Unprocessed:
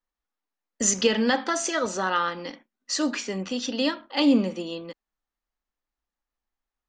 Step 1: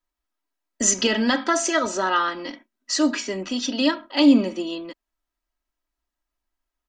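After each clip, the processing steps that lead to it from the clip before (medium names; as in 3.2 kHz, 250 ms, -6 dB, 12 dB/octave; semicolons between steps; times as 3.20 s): comb 3.1 ms, depth 62%; trim +2 dB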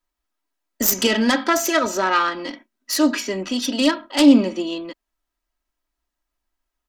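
self-modulated delay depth 0.1 ms; trim +3 dB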